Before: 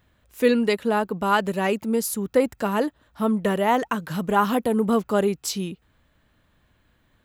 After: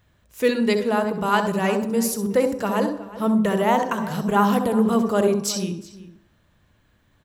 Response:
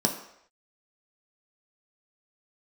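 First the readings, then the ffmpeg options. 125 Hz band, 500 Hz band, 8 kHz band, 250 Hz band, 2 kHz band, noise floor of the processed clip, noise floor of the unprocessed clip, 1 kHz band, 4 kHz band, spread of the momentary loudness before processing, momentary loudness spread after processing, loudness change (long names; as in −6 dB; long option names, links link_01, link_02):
+3.0 dB, +1.0 dB, +3.0 dB, +2.5 dB, +0.5 dB, −62 dBFS, −65 dBFS, +1.0 dB, +1.5 dB, 6 LU, 6 LU, +1.5 dB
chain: -filter_complex "[0:a]equalizer=frequency=100:width_type=o:width=0.67:gain=5,equalizer=frequency=250:width_type=o:width=0.67:gain=-4,equalizer=frequency=6300:width_type=o:width=0.67:gain=4,asplit=2[link_01][link_02];[link_02]adelay=367.3,volume=-16dB,highshelf=frequency=4000:gain=-8.27[link_03];[link_01][link_03]amix=inputs=2:normalize=0,asplit=2[link_04][link_05];[1:a]atrim=start_sample=2205,adelay=65[link_06];[link_05][link_06]afir=irnorm=-1:irlink=0,volume=-17.5dB[link_07];[link_04][link_07]amix=inputs=2:normalize=0"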